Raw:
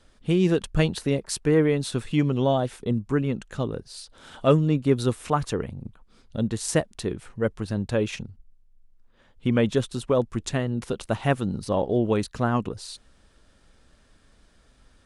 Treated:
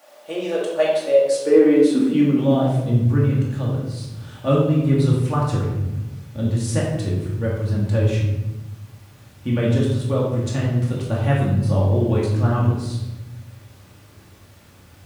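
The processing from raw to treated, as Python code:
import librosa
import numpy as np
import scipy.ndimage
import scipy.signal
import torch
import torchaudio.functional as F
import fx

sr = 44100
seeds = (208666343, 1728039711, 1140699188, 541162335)

y = fx.dmg_noise_colour(x, sr, seeds[0], colour='pink', level_db=-51.0)
y = fx.filter_sweep_highpass(y, sr, from_hz=590.0, to_hz=96.0, start_s=1.1, end_s=3.06, q=6.8)
y = fx.room_shoebox(y, sr, seeds[1], volume_m3=450.0, walls='mixed', distance_m=2.4)
y = y * 10.0 ** (-6.0 / 20.0)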